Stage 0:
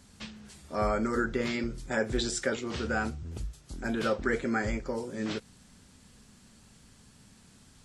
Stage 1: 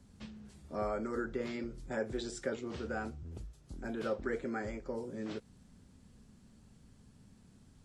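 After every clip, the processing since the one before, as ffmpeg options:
-filter_complex "[0:a]tiltshelf=f=770:g=6,acrossover=split=330|1400[s0][s1][s2];[s0]acompressor=threshold=0.0158:ratio=6[s3];[s3][s1][s2]amix=inputs=3:normalize=0,volume=0.447"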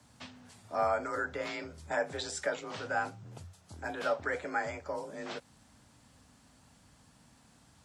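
-af "afreqshift=37,lowshelf=f=530:t=q:w=1.5:g=-10,volume=2.24"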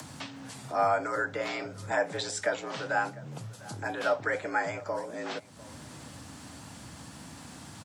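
-filter_complex "[0:a]acompressor=mode=upward:threshold=0.0126:ratio=2.5,asplit=2[s0][s1];[s1]adelay=699.7,volume=0.112,highshelf=f=4000:g=-15.7[s2];[s0][s2]amix=inputs=2:normalize=0,afreqshift=23,volume=1.58"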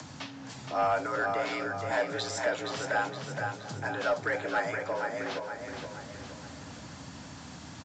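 -af "aecho=1:1:470|940|1410|1880|2350|2820:0.501|0.236|0.111|0.052|0.0245|0.0115,asoftclip=type=tanh:threshold=0.119" -ar 16000 -c:a pcm_mulaw

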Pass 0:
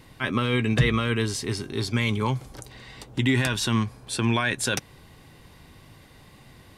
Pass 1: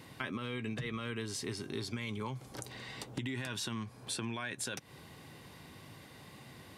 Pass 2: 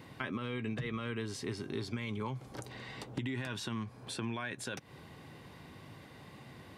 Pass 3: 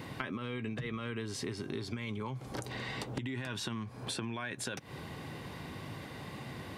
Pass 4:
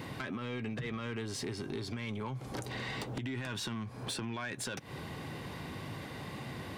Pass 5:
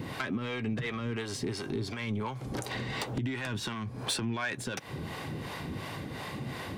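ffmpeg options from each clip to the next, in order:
-af "highpass=110,alimiter=limit=0.15:level=0:latency=1:release=115,acompressor=threshold=0.0178:ratio=6,volume=0.891"
-af "equalizer=f=13000:t=o:w=2.3:g=-9,volume=1.19"
-af "acompressor=threshold=0.00708:ratio=6,volume=2.51"
-af "asoftclip=type=tanh:threshold=0.0237,volume=1.26"
-filter_complex "[0:a]acrossover=split=450[s0][s1];[s0]aeval=exprs='val(0)*(1-0.7/2+0.7/2*cos(2*PI*2.8*n/s))':c=same[s2];[s1]aeval=exprs='val(0)*(1-0.7/2-0.7/2*cos(2*PI*2.8*n/s))':c=same[s3];[s2][s3]amix=inputs=2:normalize=0,volume=2.37"

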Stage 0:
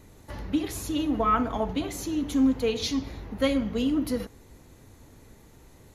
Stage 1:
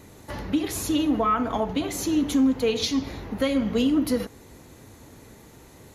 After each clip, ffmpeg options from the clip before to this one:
-af "highpass=f=110:p=1,alimiter=limit=0.0944:level=0:latency=1:release=268,volume=2.11"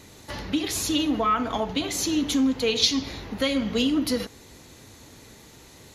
-af "equalizer=f=4300:w=0.6:g=9.5,volume=0.794"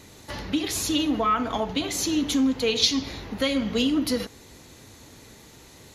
-af anull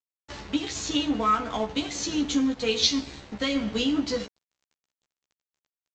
-filter_complex "[0:a]aresample=16000,aeval=exprs='sgn(val(0))*max(abs(val(0))-0.0112,0)':c=same,aresample=44100,asplit=2[s0][s1];[s1]adelay=14,volume=0.708[s2];[s0][s2]amix=inputs=2:normalize=0,volume=0.75"

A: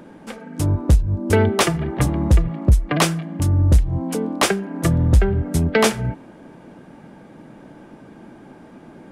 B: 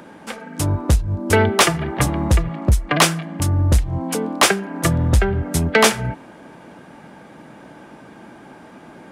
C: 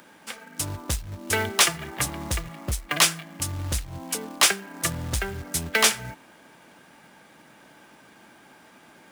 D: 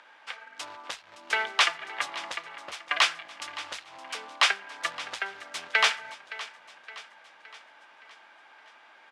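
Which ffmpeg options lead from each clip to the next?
-filter_complex "[0:a]highpass=41,acrossover=split=650[s0][s1];[s1]acontrast=84[s2];[s0][s2]amix=inputs=2:normalize=0,volume=0.891"
-af "tiltshelf=f=1300:g=-7,acrusher=bits=3:mode=log:mix=0:aa=0.000001,volume=0.422"
-af "asuperpass=centerf=1700:order=4:qfactor=0.54,aecho=1:1:567|1134|1701|2268|2835:0.158|0.084|0.0445|0.0236|0.0125"

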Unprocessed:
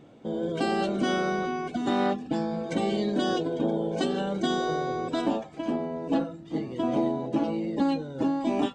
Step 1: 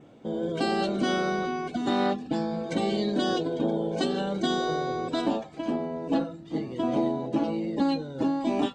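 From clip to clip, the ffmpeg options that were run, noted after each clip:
-af "adynamicequalizer=threshold=0.00178:dfrequency=4200:dqfactor=4.1:tfrequency=4200:tqfactor=4.1:attack=5:release=100:ratio=0.375:range=3:mode=boostabove:tftype=bell"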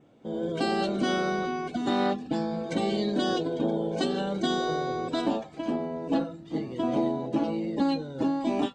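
-af "dynaudnorm=f=180:g=3:m=2.11,volume=0.447"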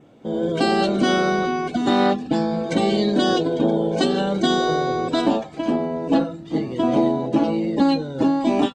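-af "aresample=32000,aresample=44100,volume=2.51"

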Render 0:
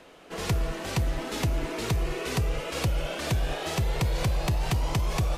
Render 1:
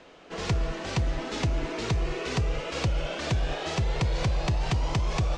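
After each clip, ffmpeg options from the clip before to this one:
-af "lowpass=f=6900:w=0.5412,lowpass=f=6900:w=1.3066"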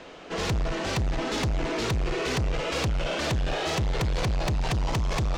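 -af "asoftclip=type=tanh:threshold=0.0316,volume=2.24"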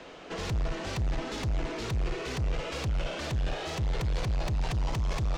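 -filter_complex "[0:a]acrossover=split=130[s0][s1];[s1]acompressor=threshold=0.0224:ratio=3[s2];[s0][s2]amix=inputs=2:normalize=0,volume=0.794"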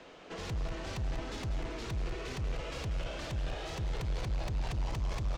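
-af "aecho=1:1:191|382|573|764|955|1146|1337:0.282|0.166|0.0981|0.0579|0.0342|0.0201|0.0119,volume=0.501"

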